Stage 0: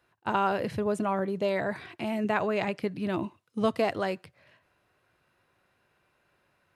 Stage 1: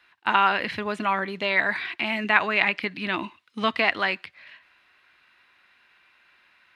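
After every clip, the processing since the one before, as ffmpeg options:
ffmpeg -i in.wav -filter_complex "[0:a]equalizer=frequency=125:width_type=o:width=1:gain=-10,equalizer=frequency=250:width_type=o:width=1:gain=4,equalizer=frequency=500:width_type=o:width=1:gain=-5,equalizer=frequency=1000:width_type=o:width=1:gain=5,equalizer=frequency=2000:width_type=o:width=1:gain=7,equalizer=frequency=4000:width_type=o:width=1:gain=9,acrossover=split=3900[link_01][link_02];[link_02]acompressor=threshold=-47dB:ratio=4:attack=1:release=60[link_03];[link_01][link_03]amix=inputs=2:normalize=0,equalizer=frequency=2400:width=0.72:gain=8.5,volume=-1.5dB" out.wav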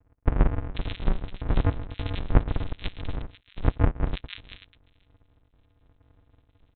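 ffmpeg -i in.wav -filter_complex "[0:a]aresample=8000,acrusher=samples=42:mix=1:aa=0.000001,aresample=44100,acrossover=split=2100[link_01][link_02];[link_02]adelay=490[link_03];[link_01][link_03]amix=inputs=2:normalize=0" out.wav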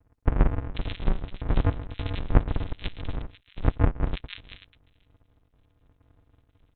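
ffmpeg -i in.wav -ar 48000 -c:a libopus -b:a 48k out.opus

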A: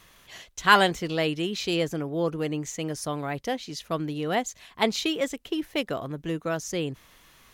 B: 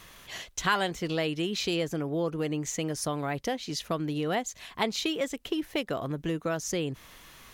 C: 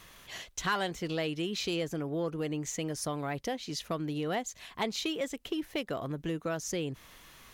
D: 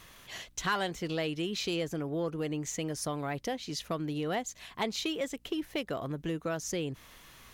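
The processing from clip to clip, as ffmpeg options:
ffmpeg -i in.wav -af "acompressor=threshold=-34dB:ratio=2.5,volume=4.5dB" out.wav
ffmpeg -i in.wav -af "asoftclip=type=tanh:threshold=-17dB,volume=-3dB" out.wav
ffmpeg -i in.wav -af "aeval=exprs='val(0)+0.000501*(sin(2*PI*60*n/s)+sin(2*PI*2*60*n/s)/2+sin(2*PI*3*60*n/s)/3+sin(2*PI*4*60*n/s)/4+sin(2*PI*5*60*n/s)/5)':channel_layout=same" out.wav

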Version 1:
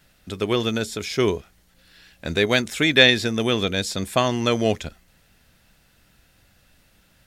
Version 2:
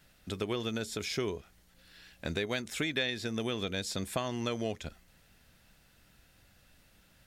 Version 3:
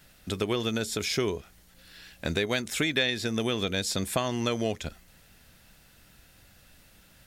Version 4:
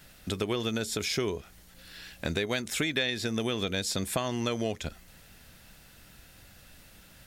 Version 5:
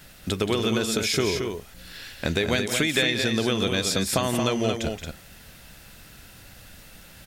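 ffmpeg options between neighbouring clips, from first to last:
ffmpeg -i in.wav -af "acompressor=threshold=-27dB:ratio=4,volume=-4.5dB" out.wav
ffmpeg -i in.wav -af "highshelf=frequency=6700:gain=4,volume=5.5dB" out.wav
ffmpeg -i in.wav -af "acompressor=threshold=-38dB:ratio=1.5,volume=3dB" out.wav
ffmpeg -i in.wav -af "aecho=1:1:174.9|224.5:0.282|0.501,volume=5.5dB" out.wav

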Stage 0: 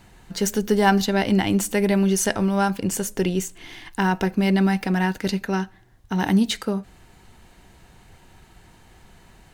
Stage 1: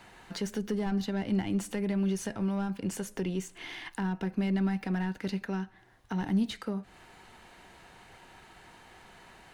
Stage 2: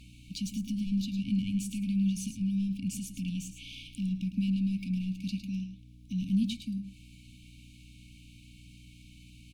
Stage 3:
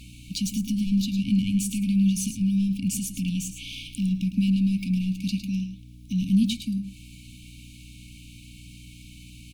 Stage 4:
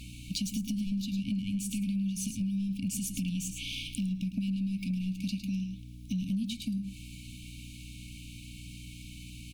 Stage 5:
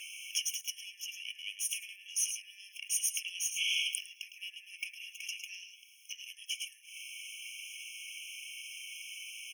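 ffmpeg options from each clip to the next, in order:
ffmpeg -i in.wav -filter_complex "[0:a]aexciter=amount=1.2:drive=3:freq=9600,asplit=2[link_01][link_02];[link_02]highpass=frequency=720:poles=1,volume=17dB,asoftclip=type=tanh:threshold=-5dB[link_03];[link_01][link_03]amix=inputs=2:normalize=0,lowpass=frequency=2700:poles=1,volume=-6dB,acrossover=split=260[link_04][link_05];[link_05]acompressor=threshold=-31dB:ratio=6[link_06];[link_04][link_06]amix=inputs=2:normalize=0,volume=-7.5dB" out.wav
ffmpeg -i in.wav -filter_complex "[0:a]afftfilt=real='re*(1-between(b*sr/4096,280,2200))':imag='im*(1-between(b*sr/4096,280,2200))':win_size=4096:overlap=0.75,aeval=exprs='val(0)+0.00282*(sin(2*PI*60*n/s)+sin(2*PI*2*60*n/s)/2+sin(2*PI*3*60*n/s)/3+sin(2*PI*4*60*n/s)/4+sin(2*PI*5*60*n/s)/5)':channel_layout=same,asplit=2[link_01][link_02];[link_02]aecho=0:1:107:0.316[link_03];[link_01][link_03]amix=inputs=2:normalize=0" out.wav
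ffmpeg -i in.wav -af "highshelf=frequency=7500:gain=7.5,volume=7dB" out.wav
ffmpeg -i in.wav -af "acompressor=threshold=-30dB:ratio=6" out.wav
ffmpeg -i in.wav -filter_complex "[0:a]asplit=2[link_01][link_02];[link_02]asoftclip=type=hard:threshold=-34.5dB,volume=-10.5dB[link_03];[link_01][link_03]amix=inputs=2:normalize=0,afftfilt=real='re*eq(mod(floor(b*sr/1024/1700),2),1)':imag='im*eq(mod(floor(b*sr/1024/1700),2),1)':win_size=1024:overlap=0.75,volume=6.5dB" out.wav

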